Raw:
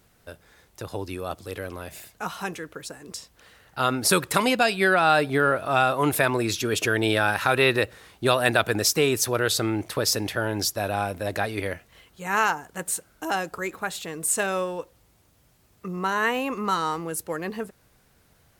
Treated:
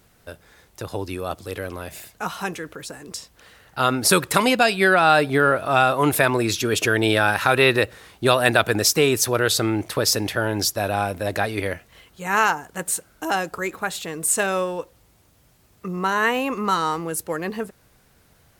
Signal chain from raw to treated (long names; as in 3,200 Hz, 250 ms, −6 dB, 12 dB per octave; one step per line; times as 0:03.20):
0:02.61–0:03.11: transient designer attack −4 dB, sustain +2 dB
level +3.5 dB